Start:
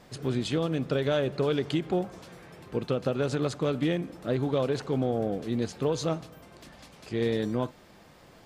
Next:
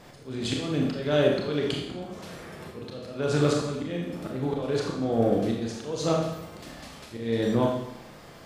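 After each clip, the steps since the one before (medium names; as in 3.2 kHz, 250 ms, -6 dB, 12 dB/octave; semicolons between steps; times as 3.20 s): slow attack 315 ms; Schroeder reverb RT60 0.79 s, combs from 27 ms, DRR -1 dB; trim +3.5 dB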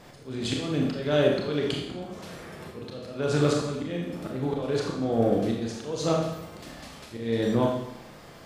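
no audible change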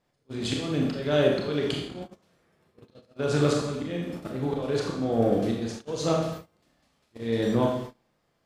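gate -35 dBFS, range -25 dB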